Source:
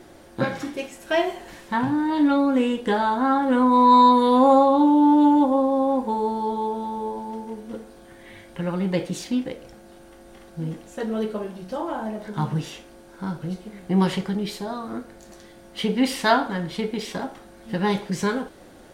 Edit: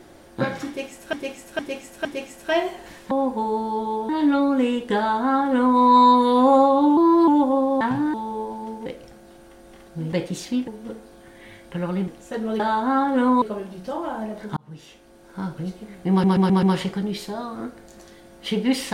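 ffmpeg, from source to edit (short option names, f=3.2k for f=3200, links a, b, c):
-filter_complex "[0:a]asplit=21[a][b][c][d][e][f][g][h][i][j][k][l][m][n][o][p][q][r][s][t][u];[a]atrim=end=1.132[v];[b]atrim=start=0.668:end=1.132[w];[c]atrim=start=0.668:end=1.132[x];[d]atrim=start=0.668:end=1.732[y];[e]atrim=start=5.818:end=6.802[z];[f]atrim=start=2.058:end=4.944[aa];[g]atrim=start=4.94:end=5.29,asetpts=PTS-STARTPTS,asetrate=50274,aresample=44100,atrim=end_sample=13539,asetpts=PTS-STARTPTS[ab];[h]atrim=start=5.286:end=5.822[ac];[i]atrim=start=1.728:end=2.062[ad];[j]atrim=start=6.798:end=7.522[ae];[k]atrim=start=9.468:end=10.742[af];[l]atrim=start=8.918:end=9.472[ag];[m]atrim=start=7.518:end=8.922[ah];[n]atrim=start=10.738:end=11.262[ai];[o]atrim=start=2.938:end=3.762[aj];[p]atrim=start=11.258:end=12.41,asetpts=PTS-STARTPTS,afade=t=out:st=1.148:d=0.004:c=hsin[ak];[q]atrim=start=12.41:end=14.082,asetpts=PTS-STARTPTS,afade=t=in:d=0.84[al];[r]atrim=start=13.948:end=14.082[am];[s]atrim=start=13.948:end=14.082[an];[t]atrim=start=13.948:end=14.082[ao];[u]atrim=start=13.948[ap];[v][w]acrossfade=d=0.004:c1=hsin:c2=hsin[aq];[aq][x]acrossfade=d=0.004:c1=hsin:c2=hsin[ar];[ar][y]acrossfade=d=0.004:c1=hsin:c2=hsin[as];[as][z]acrossfade=d=0.004:c1=hsin:c2=hsin[at];[at][aa]acrossfade=d=0.004:c1=hsin:c2=hsin[au];[au][ab]acrossfade=d=0.004:c1=hsin:c2=hsin[av];[av][ac]acrossfade=d=0.004:c1=hsin:c2=hsin[aw];[aw][ad]acrossfade=d=0.004:c1=hsin:c2=hsin[ax];[ax][ae]acrossfade=d=0.004:c1=hsin:c2=hsin[ay];[ay][af]acrossfade=d=0.004:c1=hsin:c2=hsin[az];[az][ag]acrossfade=d=0.004:c1=hsin:c2=hsin[ba];[ba][ah]acrossfade=d=0.004:c1=hsin:c2=hsin[bb];[bb][ai]acrossfade=d=0.004:c1=hsin:c2=hsin[bc];[bc][aj]acrossfade=d=0.004:c1=hsin:c2=hsin[bd];[ak][al]concat=n=2:v=0:a=1[be];[bd][be]acrossfade=d=0.004:c1=hsin:c2=hsin[bf];[bf][am]acrossfade=d=0.004:c1=hsin:c2=hsin[bg];[bg][an]acrossfade=d=0.004:c1=hsin:c2=hsin[bh];[bh][ao]acrossfade=d=0.004:c1=hsin:c2=hsin[bi];[bi][ap]acrossfade=d=0.004:c1=hsin:c2=hsin"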